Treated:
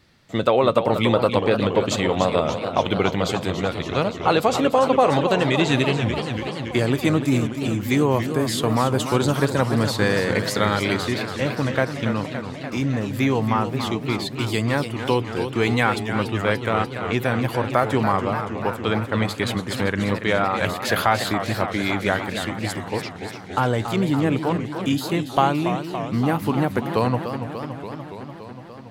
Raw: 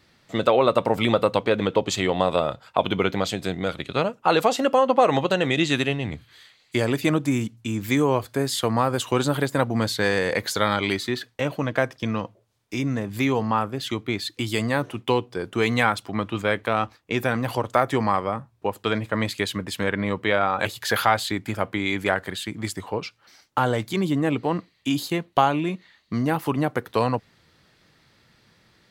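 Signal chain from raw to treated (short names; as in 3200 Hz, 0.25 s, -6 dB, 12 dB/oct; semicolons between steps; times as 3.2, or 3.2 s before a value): low shelf 180 Hz +5.5 dB; warbling echo 0.288 s, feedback 75%, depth 192 cents, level -9 dB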